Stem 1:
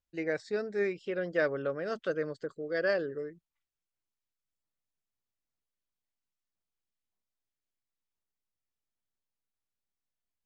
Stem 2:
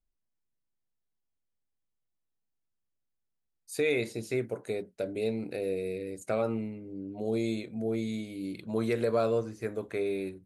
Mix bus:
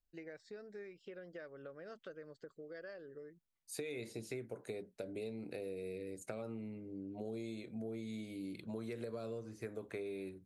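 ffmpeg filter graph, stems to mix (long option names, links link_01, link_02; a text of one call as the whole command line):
ffmpeg -i stem1.wav -i stem2.wav -filter_complex "[0:a]acompressor=threshold=-39dB:ratio=8,volume=-8dB[link_01];[1:a]acrossover=split=410|3000[link_02][link_03][link_04];[link_03]acompressor=threshold=-33dB:ratio=6[link_05];[link_02][link_05][link_04]amix=inputs=3:normalize=0,volume=-5dB[link_06];[link_01][link_06]amix=inputs=2:normalize=0,acompressor=threshold=-40dB:ratio=6" out.wav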